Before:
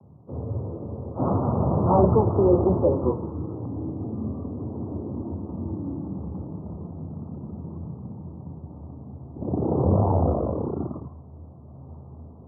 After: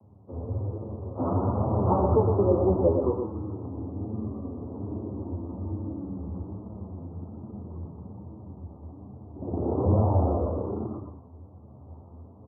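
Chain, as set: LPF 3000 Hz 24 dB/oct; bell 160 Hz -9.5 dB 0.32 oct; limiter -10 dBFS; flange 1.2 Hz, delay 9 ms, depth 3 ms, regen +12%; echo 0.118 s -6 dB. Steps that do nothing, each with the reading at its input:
LPF 3000 Hz: input band ends at 1100 Hz

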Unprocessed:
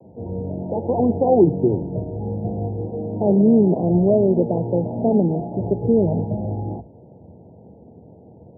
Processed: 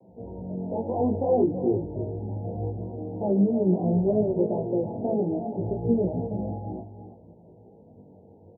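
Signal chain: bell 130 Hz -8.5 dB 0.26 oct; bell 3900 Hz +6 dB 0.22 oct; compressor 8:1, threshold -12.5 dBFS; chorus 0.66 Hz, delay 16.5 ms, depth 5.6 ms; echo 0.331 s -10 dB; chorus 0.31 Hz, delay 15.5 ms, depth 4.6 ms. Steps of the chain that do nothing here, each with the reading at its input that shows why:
bell 3900 Hz: input band ends at 910 Hz

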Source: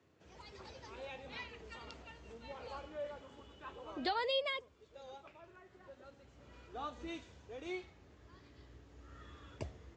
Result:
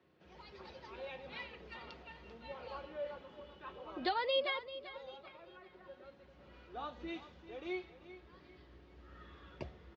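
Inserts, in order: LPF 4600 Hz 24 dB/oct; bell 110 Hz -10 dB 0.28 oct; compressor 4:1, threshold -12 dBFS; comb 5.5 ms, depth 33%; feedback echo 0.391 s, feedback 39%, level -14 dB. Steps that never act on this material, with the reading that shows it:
compressor, threshold -12 dBFS: input peak -24.5 dBFS

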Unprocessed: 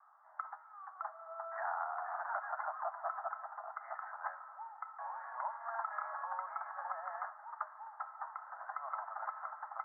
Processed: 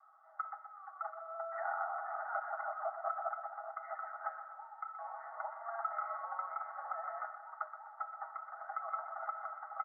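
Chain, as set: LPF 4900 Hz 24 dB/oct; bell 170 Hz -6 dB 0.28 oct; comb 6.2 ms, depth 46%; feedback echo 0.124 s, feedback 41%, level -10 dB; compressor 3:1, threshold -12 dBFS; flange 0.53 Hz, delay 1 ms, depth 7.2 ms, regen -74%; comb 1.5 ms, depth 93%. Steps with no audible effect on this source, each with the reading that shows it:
LPF 4900 Hz: input band ends at 2200 Hz; bell 170 Hz: input band starts at 510 Hz; compressor, threshold -12 dBFS: input peak -23.5 dBFS

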